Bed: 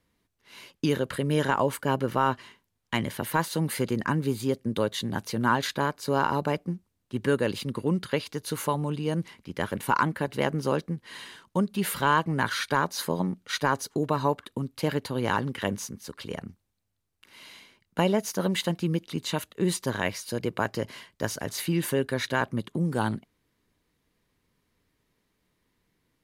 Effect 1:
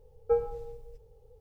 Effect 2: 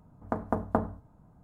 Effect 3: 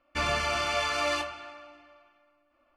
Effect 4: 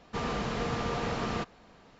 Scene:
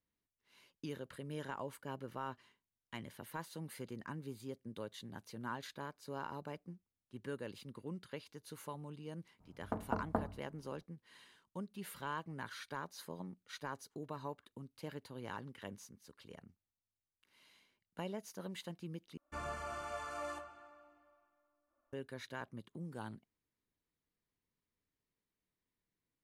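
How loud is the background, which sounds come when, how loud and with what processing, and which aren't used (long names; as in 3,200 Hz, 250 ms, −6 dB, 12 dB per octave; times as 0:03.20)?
bed −19 dB
0:09.40: mix in 2 −8.5 dB
0:19.17: overwrite with 3 −13 dB + flat-topped bell 3,400 Hz −12 dB
not used: 1, 4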